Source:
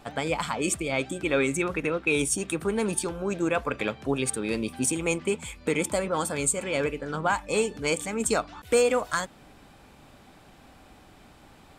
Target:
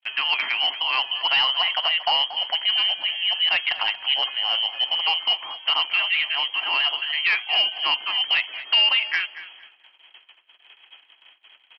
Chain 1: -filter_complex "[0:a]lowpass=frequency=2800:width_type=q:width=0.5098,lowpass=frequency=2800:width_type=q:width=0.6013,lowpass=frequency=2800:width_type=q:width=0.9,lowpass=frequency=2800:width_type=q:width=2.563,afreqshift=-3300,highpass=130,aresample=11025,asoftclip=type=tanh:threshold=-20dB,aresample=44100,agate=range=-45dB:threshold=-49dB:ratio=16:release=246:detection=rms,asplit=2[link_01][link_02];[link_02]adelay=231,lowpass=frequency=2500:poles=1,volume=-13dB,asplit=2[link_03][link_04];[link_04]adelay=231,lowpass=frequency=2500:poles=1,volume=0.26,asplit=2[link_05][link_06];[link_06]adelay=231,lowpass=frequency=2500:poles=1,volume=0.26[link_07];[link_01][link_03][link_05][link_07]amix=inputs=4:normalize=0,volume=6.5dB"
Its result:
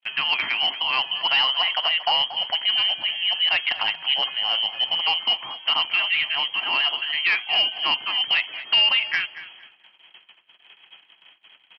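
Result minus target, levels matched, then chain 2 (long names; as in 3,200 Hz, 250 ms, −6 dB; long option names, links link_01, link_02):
125 Hz band +8.0 dB
-filter_complex "[0:a]lowpass=frequency=2800:width_type=q:width=0.5098,lowpass=frequency=2800:width_type=q:width=0.6013,lowpass=frequency=2800:width_type=q:width=0.9,lowpass=frequency=2800:width_type=q:width=2.563,afreqshift=-3300,highpass=380,aresample=11025,asoftclip=type=tanh:threshold=-20dB,aresample=44100,agate=range=-45dB:threshold=-49dB:ratio=16:release=246:detection=rms,asplit=2[link_01][link_02];[link_02]adelay=231,lowpass=frequency=2500:poles=1,volume=-13dB,asplit=2[link_03][link_04];[link_04]adelay=231,lowpass=frequency=2500:poles=1,volume=0.26,asplit=2[link_05][link_06];[link_06]adelay=231,lowpass=frequency=2500:poles=1,volume=0.26[link_07];[link_01][link_03][link_05][link_07]amix=inputs=4:normalize=0,volume=6.5dB"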